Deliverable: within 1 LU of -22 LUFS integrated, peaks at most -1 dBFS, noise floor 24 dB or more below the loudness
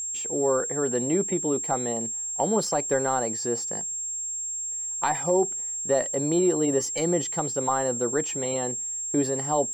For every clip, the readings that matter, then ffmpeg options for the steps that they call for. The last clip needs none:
steady tone 7500 Hz; tone level -29 dBFS; loudness -25.5 LUFS; peak -12.0 dBFS; loudness target -22.0 LUFS
-> -af "bandreject=f=7.5k:w=30"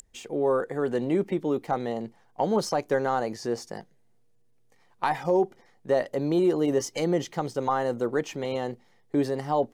steady tone none; loudness -27.5 LUFS; peak -13.0 dBFS; loudness target -22.0 LUFS
-> -af "volume=5.5dB"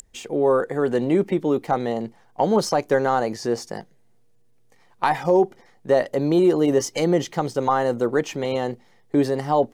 loudness -22.0 LUFS; peak -7.5 dBFS; noise floor -56 dBFS

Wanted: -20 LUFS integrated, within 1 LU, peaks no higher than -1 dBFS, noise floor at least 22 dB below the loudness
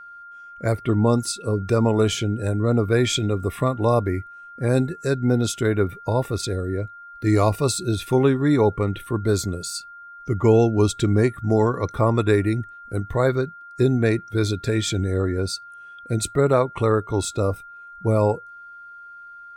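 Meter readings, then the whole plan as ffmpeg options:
steady tone 1400 Hz; tone level -39 dBFS; loudness -22.0 LUFS; peak -5.5 dBFS; loudness target -20.0 LUFS
-> -af "bandreject=f=1.4k:w=30"
-af "volume=2dB"

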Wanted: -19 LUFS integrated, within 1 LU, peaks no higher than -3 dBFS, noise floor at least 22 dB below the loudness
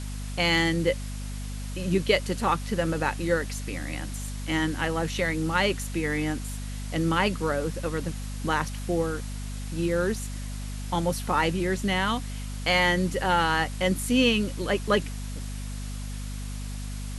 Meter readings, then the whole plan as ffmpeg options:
hum 50 Hz; harmonics up to 250 Hz; hum level -32 dBFS; noise floor -34 dBFS; noise floor target -50 dBFS; loudness -27.5 LUFS; peak -9.0 dBFS; loudness target -19.0 LUFS
-> -af "bandreject=f=50:t=h:w=4,bandreject=f=100:t=h:w=4,bandreject=f=150:t=h:w=4,bandreject=f=200:t=h:w=4,bandreject=f=250:t=h:w=4"
-af "afftdn=nr=16:nf=-34"
-af "volume=8.5dB,alimiter=limit=-3dB:level=0:latency=1"

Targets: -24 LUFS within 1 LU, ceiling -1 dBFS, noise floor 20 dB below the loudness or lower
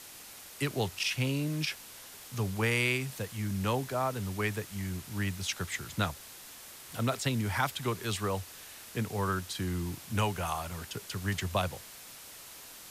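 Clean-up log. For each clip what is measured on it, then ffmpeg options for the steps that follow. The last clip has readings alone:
noise floor -49 dBFS; noise floor target -53 dBFS; loudness -33.0 LUFS; peak -14.5 dBFS; loudness target -24.0 LUFS
-> -af "afftdn=nr=6:nf=-49"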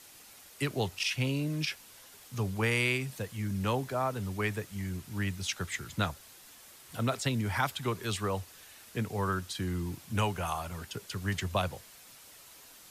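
noise floor -54 dBFS; loudness -33.0 LUFS; peak -14.5 dBFS; loudness target -24.0 LUFS
-> -af "volume=9dB"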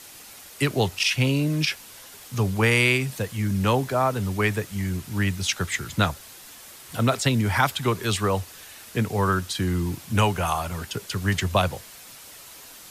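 loudness -24.0 LUFS; peak -5.5 dBFS; noise floor -45 dBFS

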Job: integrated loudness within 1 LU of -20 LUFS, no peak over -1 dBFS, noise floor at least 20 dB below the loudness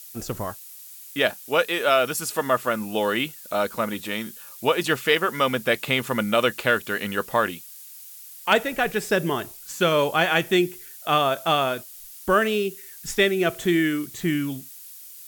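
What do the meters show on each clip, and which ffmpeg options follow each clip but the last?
noise floor -43 dBFS; noise floor target -44 dBFS; loudness -23.5 LUFS; peak -5.5 dBFS; loudness target -20.0 LUFS
-> -af "afftdn=nr=6:nf=-43"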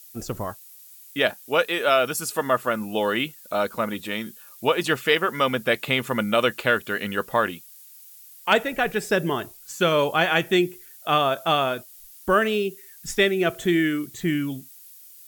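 noise floor -47 dBFS; loudness -23.5 LUFS; peak -5.5 dBFS; loudness target -20.0 LUFS
-> -af "volume=3.5dB"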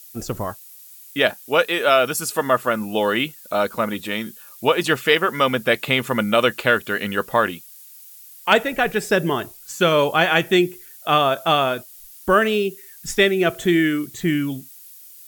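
loudness -20.0 LUFS; peak -2.0 dBFS; noise floor -44 dBFS

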